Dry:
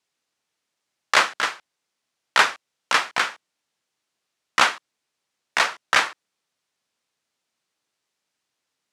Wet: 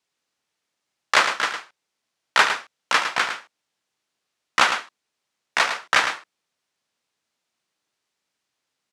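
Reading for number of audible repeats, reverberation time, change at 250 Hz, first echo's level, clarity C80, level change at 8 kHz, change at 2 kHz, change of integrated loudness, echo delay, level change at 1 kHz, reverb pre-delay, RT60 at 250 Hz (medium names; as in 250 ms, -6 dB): 1, no reverb, +0.5 dB, -8.5 dB, no reverb, -0.5 dB, +0.5 dB, 0.0 dB, 108 ms, +0.5 dB, no reverb, no reverb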